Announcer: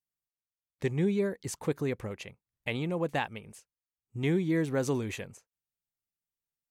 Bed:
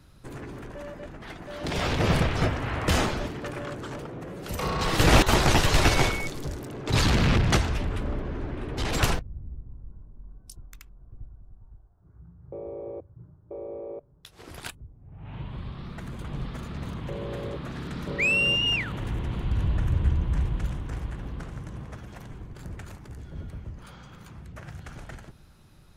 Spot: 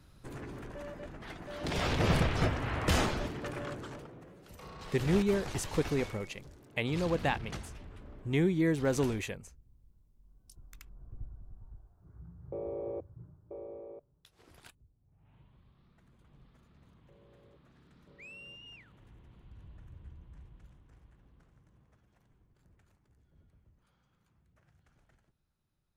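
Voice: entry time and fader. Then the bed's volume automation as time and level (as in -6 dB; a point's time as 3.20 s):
4.10 s, 0.0 dB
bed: 3.71 s -4.5 dB
4.55 s -20 dB
10.13 s -20 dB
10.96 s -1 dB
13.02 s -1 dB
15.61 s -27 dB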